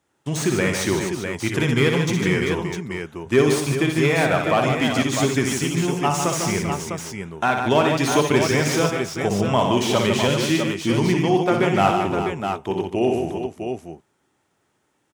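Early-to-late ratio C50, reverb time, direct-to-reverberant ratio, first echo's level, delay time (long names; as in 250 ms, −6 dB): no reverb audible, no reverb audible, no reverb audible, −6.0 dB, 60 ms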